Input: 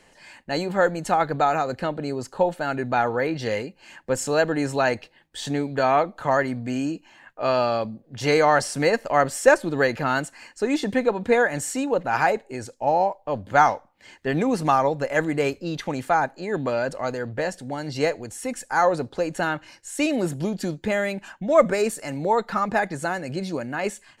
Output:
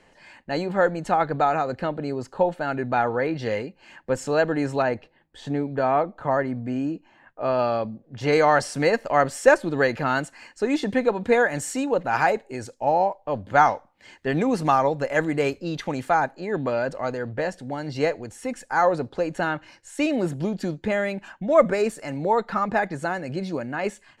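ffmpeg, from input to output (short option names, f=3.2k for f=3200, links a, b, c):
-af "asetnsamples=n=441:p=0,asendcmd='4.82 lowpass f 1100;7.59 lowpass f 2100;8.33 lowpass f 5500;11.03 lowpass f 9200;12.87 lowpass f 4500;13.75 lowpass f 7500;16.34 lowpass f 3400',lowpass=f=2.9k:p=1"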